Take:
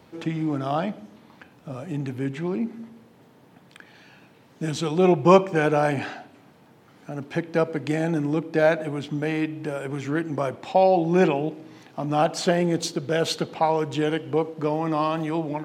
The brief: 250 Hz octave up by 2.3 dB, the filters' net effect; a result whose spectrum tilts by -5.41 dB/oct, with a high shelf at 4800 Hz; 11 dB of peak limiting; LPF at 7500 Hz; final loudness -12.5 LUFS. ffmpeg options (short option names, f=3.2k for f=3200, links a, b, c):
-af "lowpass=7.5k,equalizer=f=250:t=o:g=3.5,highshelf=f=4.8k:g=7,volume=12.5dB,alimiter=limit=0dB:level=0:latency=1"